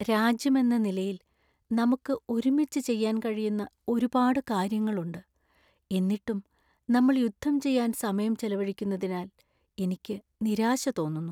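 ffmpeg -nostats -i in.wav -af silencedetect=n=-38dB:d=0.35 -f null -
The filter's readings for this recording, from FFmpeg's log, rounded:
silence_start: 1.16
silence_end: 1.71 | silence_duration: 0.55
silence_start: 5.19
silence_end: 5.91 | silence_duration: 0.72
silence_start: 6.40
silence_end: 6.89 | silence_duration: 0.49
silence_start: 9.26
silence_end: 9.78 | silence_duration: 0.52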